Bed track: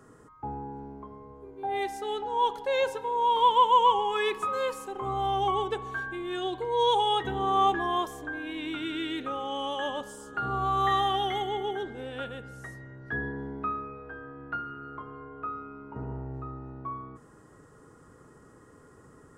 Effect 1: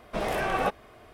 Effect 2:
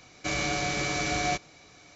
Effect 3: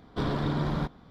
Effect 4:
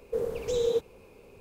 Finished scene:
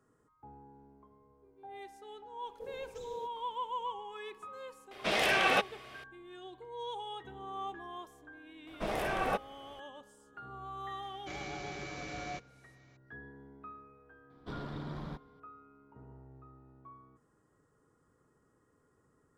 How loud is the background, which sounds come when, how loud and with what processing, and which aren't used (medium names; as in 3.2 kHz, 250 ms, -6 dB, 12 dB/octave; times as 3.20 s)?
bed track -17 dB
2.47 s: add 4 -16.5 dB
4.91 s: add 1 -2.5 dB + frequency weighting D
8.67 s: add 1 -5.5 dB
11.02 s: add 2 -12.5 dB + low-pass 3.1 kHz 6 dB/octave
14.30 s: add 3 -13 dB